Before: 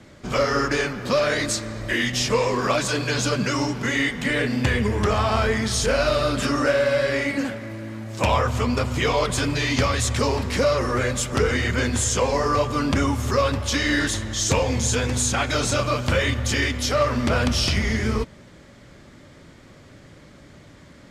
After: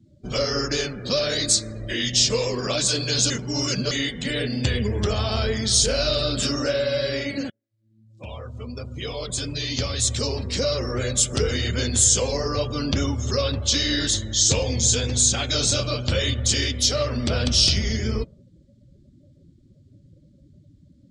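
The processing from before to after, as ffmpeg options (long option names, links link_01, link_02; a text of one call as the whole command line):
ffmpeg -i in.wav -filter_complex "[0:a]asettb=1/sr,asplit=3[link_01][link_02][link_03];[link_01]atrim=end=12.284[link_04];[link_02]atrim=start=12.28:end=16.09,asetpts=PTS-STARTPTS,afade=type=in:duration=0.004:curve=qsin,afade=type=out:start_time=3.806:duration=0.004:curve=qsin,lowpass=8100[link_05];[link_03]atrim=start=16.086[link_06];[link_04][link_05]acrossfade=duration=0.004:curve1=hsin:curve2=qsin[link_07];[link_07][link_06]acrossfade=duration=0.004:curve1=qsin:curve2=hsin,asplit=4[link_08][link_09][link_10][link_11];[link_08]atrim=end=3.302[link_12];[link_09]atrim=start=3.298:end=3.912,asetpts=PTS-STARTPTS,areverse[link_13];[link_10]atrim=start=3.908:end=7.5,asetpts=PTS-STARTPTS,afade=type=out:start_time=3.588:duration=0.004:curve=hsin[link_14];[link_11]atrim=start=7.5,asetpts=PTS-STARTPTS,afade=type=in:duration=3.58[link_15];[link_12][link_13]acrossfade=duration=0.004:curve1=hsin:curve2=hsin[link_16];[link_14][link_15]concat=n=2:v=0:a=1[link_17];[link_16][link_17]acrossfade=duration=0.004:curve1=hsin:curve2=hsin,afftdn=noise_reduction=28:noise_floor=-38,equalizer=frequency=250:width_type=o:width=1:gain=-3,equalizer=frequency=1000:width_type=o:width=1:gain=-10,equalizer=frequency=2000:width_type=o:width=1:gain=-7,equalizer=frequency=4000:width_type=o:width=1:gain=8,equalizer=frequency=8000:width_type=o:width=1:gain=7" out.wav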